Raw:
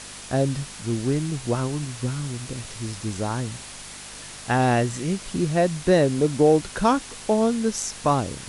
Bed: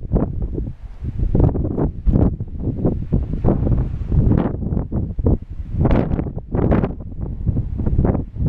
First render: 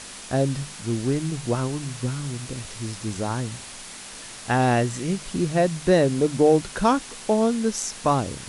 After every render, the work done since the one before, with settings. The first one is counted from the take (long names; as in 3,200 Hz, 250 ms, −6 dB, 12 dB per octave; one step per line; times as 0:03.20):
hum removal 50 Hz, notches 3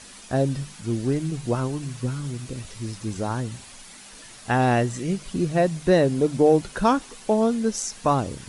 broadband denoise 8 dB, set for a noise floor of −40 dBFS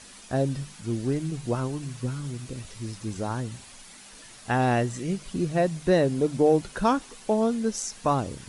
level −3 dB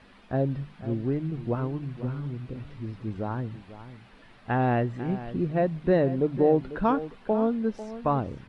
high-frequency loss of the air 430 metres
single-tap delay 496 ms −14 dB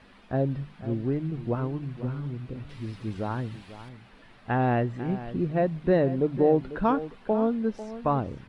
0:02.69–0:03.89: high-shelf EQ 2,600 Hz +11 dB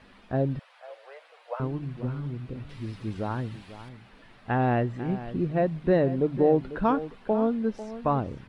0:00.59–0:01.60: Butterworth high-pass 510 Hz 72 dB per octave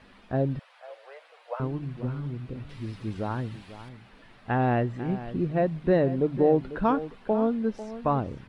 no processing that can be heard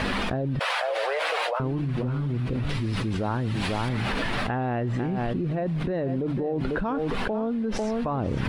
brickwall limiter −21.5 dBFS, peak gain reduction 11 dB
envelope flattener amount 100%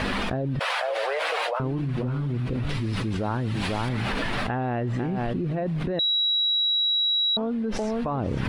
0:05.99–0:07.37: beep over 3,880 Hz −20 dBFS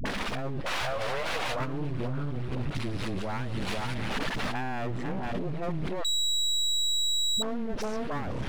half-wave rectification
all-pass dispersion highs, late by 56 ms, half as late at 420 Hz